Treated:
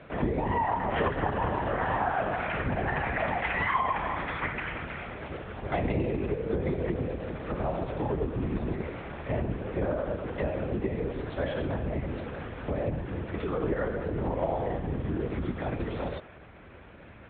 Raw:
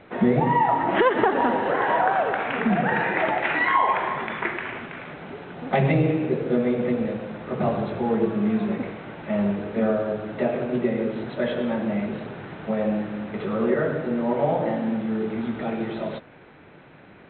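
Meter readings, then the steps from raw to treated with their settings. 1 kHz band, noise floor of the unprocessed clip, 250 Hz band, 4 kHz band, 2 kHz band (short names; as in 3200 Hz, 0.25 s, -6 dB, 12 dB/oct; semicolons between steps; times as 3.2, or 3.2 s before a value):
-7.0 dB, -48 dBFS, -9.0 dB, -6.0 dB, -6.5 dB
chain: compressor 2:1, threshold -30 dBFS, peak gain reduction 9 dB; LPC vocoder at 8 kHz whisper; HPF 45 Hz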